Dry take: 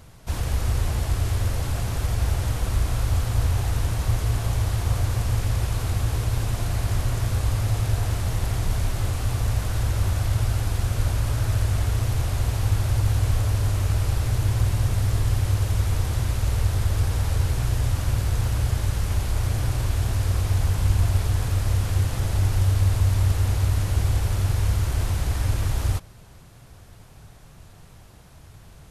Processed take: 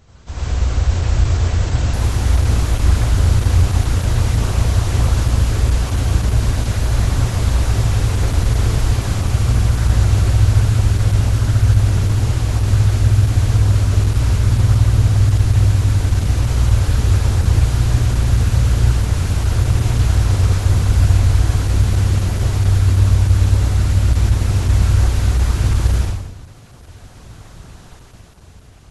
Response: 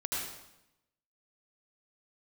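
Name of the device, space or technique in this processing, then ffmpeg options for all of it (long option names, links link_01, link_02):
speakerphone in a meeting room: -filter_complex "[1:a]atrim=start_sample=2205[link_01];[0:a][link_01]afir=irnorm=-1:irlink=0,dynaudnorm=framelen=170:gausssize=11:maxgain=6dB" -ar 48000 -c:a libopus -b:a 12k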